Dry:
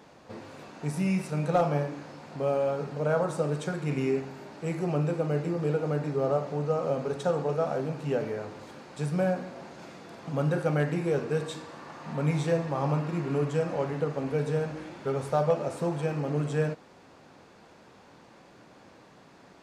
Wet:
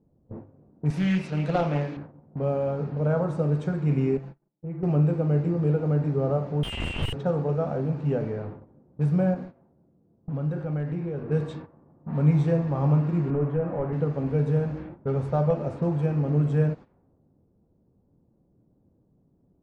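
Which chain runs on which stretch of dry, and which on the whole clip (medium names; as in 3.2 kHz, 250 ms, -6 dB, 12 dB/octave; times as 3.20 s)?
0.90–1.97 s: frequency weighting D + loudspeaker Doppler distortion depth 0.26 ms
4.17–4.83 s: gate -41 dBFS, range -31 dB + comb 5.9 ms, depth 77% + compression 2:1, threshold -46 dBFS
6.63–7.13 s: frequency inversion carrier 3.3 kHz + Schmitt trigger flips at -36 dBFS
9.34–11.29 s: gate -39 dBFS, range -7 dB + compression 2:1, threshold -36 dBFS
13.30–13.93 s: overdrive pedal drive 13 dB, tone 1.8 kHz, clips at -16.5 dBFS + tape spacing loss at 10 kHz 33 dB
whole clip: RIAA curve playback; gate -36 dBFS, range -12 dB; level-controlled noise filter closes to 400 Hz, open at -20.5 dBFS; trim -2.5 dB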